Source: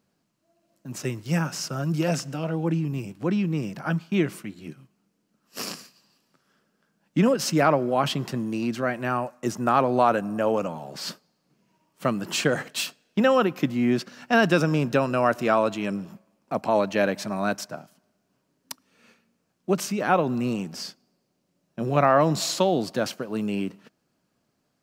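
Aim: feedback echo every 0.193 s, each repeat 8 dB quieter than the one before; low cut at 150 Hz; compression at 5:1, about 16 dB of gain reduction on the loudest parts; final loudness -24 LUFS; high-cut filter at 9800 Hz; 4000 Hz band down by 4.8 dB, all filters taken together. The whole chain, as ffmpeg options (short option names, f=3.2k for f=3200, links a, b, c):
-af "highpass=150,lowpass=9.8k,equalizer=f=4k:t=o:g=-6.5,acompressor=threshold=-34dB:ratio=5,aecho=1:1:193|386|579|772|965:0.398|0.159|0.0637|0.0255|0.0102,volume=13.5dB"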